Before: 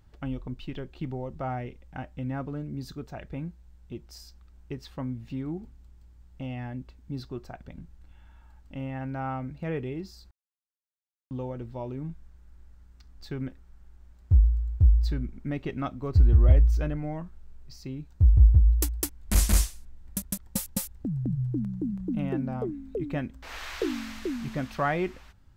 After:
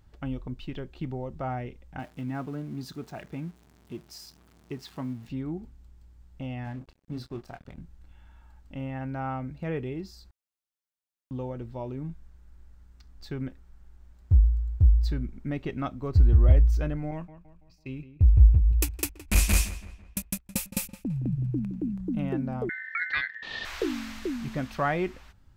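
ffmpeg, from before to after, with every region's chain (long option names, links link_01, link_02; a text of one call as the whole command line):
ffmpeg -i in.wav -filter_complex "[0:a]asettb=1/sr,asplit=3[link_01][link_02][link_03];[link_01]atrim=end=1.994[link_04];[link_02]atrim=start=1.99:end=5.28,asetpts=PTS-STARTPTS,afade=type=in:duration=0.004:curve=qsin,afade=type=out:start_time=3.286:duration=0.004:curve=qsin,aeval=exprs='val(0)+0.5*0.00376*sgn(val(0))':channel_layout=same,highpass=130,bandreject=frequency=530:width=7.5[link_05];[link_03]atrim=start=5.276[link_06];[link_04][link_05]acrossfade=duration=0.004:curve1=hsin:curve2=qsin[link_07];[link_07][link_06]acrossfade=duration=0.004:curve1=qsin:curve2=hsin,asettb=1/sr,asplit=3[link_08][link_09][link_10];[link_08]atrim=end=6.644[link_11];[link_09]atrim=start=6.64:end=7.78,asetpts=PTS-STARTPTS,afade=type=in:duration=0.004:curve=qsin,afade=type=out:start_time=1.136:duration=0.004:curve=qsin,asplit=2[link_12][link_13];[link_13]adelay=26,volume=-6.5dB[link_14];[link_12][link_14]amix=inputs=2:normalize=0,atrim=end_sample=50274,aeval=exprs='sgn(val(0))*max(abs(val(0))-0.00237,0)':channel_layout=same[link_15];[link_10]atrim=start=7.776[link_16];[link_11][link_15]acrossfade=duration=0.004:curve1=hsin:curve2=qsin[link_17];[link_17][link_16]acrossfade=duration=0.004:curve1=qsin:curve2=hsin,asettb=1/sr,asplit=3[link_18][link_19][link_20];[link_18]atrim=end=17.114[link_21];[link_19]atrim=start=17.11:end=21.94,asetpts=PTS-STARTPTS,afade=type=in:duration=0.004:curve=qsin,afade=type=out:start_time=4.826:duration=0.004:curve=qsin,agate=range=-33dB:threshold=-35dB:ratio=3:release=100:detection=peak,equalizer=frequency=2500:width_type=o:width=0.3:gain=14,asplit=2[link_22][link_23];[link_23]adelay=166,lowpass=frequency=2700:poles=1,volume=-13dB,asplit=2[link_24][link_25];[link_25]adelay=166,lowpass=frequency=2700:poles=1,volume=0.45,asplit=2[link_26][link_27];[link_27]adelay=166,lowpass=frequency=2700:poles=1,volume=0.45,asplit=2[link_28][link_29];[link_29]adelay=166,lowpass=frequency=2700:poles=1,volume=0.45[link_30];[link_22][link_24][link_26][link_28][link_30]amix=inputs=5:normalize=0,atrim=end_sample=213003[link_31];[link_20]atrim=start=21.936[link_32];[link_21][link_31]acrossfade=duration=0.004:curve1=hsin:curve2=qsin[link_33];[link_33][link_32]acrossfade=duration=0.004:curve1=qsin:curve2=hsin,asettb=1/sr,asplit=3[link_34][link_35][link_36];[link_34]atrim=end=22.694[link_37];[link_35]atrim=start=22.69:end=23.65,asetpts=PTS-STARTPTS,afade=type=in:duration=0.004:curve=qsin,afade=type=out:start_time=0.956:duration=0.004:curve=qsin,lowshelf=frequency=130:gain=8.5,aeval=exprs='val(0)*sin(2*PI*1800*n/s)':channel_layout=same,lowpass=frequency=3900:width_type=q:width=2.2[link_38];[link_36]atrim=start=23.646[link_39];[link_37][link_38]acrossfade=duration=0.004:curve1=hsin:curve2=qsin[link_40];[link_40][link_39]acrossfade=duration=0.004:curve1=qsin:curve2=hsin" out.wav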